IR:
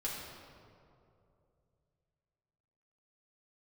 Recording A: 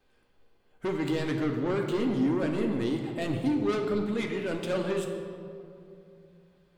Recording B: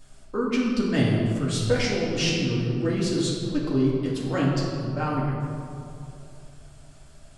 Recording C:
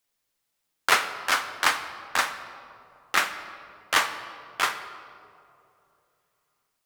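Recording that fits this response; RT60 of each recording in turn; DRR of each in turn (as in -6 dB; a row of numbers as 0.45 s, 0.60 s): B; 2.7 s, 2.7 s, 2.8 s; 2.0 dB, -5.5 dB, 8.0 dB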